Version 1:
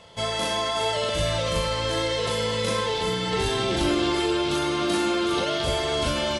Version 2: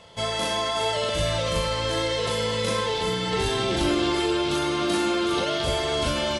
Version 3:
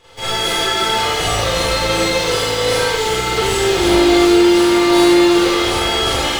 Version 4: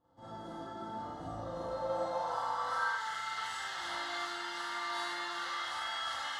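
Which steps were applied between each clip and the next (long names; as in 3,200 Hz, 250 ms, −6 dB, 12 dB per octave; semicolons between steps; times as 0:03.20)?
no processing that can be heard
lower of the sound and its delayed copy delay 2.4 ms; in parallel at −12 dB: bit-depth reduction 6 bits, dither none; on the sum: four-comb reverb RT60 0.84 s, combs from 33 ms, DRR −9 dB; level −1 dB
band-pass filter sweep 300 Hz → 2,100 Hz, 0:01.37–0:03.24; phaser with its sweep stopped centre 1,000 Hz, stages 4; level −5.5 dB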